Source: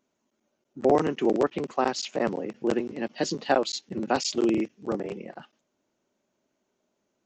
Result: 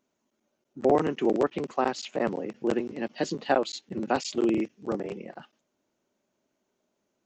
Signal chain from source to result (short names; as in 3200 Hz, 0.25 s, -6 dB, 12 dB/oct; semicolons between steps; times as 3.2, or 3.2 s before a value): dynamic EQ 5500 Hz, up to -7 dB, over -47 dBFS, Q 1.6; gain -1 dB